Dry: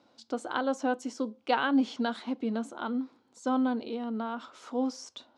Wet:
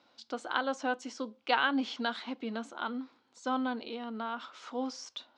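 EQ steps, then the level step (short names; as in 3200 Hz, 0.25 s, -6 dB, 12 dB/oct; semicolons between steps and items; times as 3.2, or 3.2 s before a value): air absorption 91 m; tilt shelf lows -7.5 dB; high shelf 7800 Hz -6.5 dB; 0.0 dB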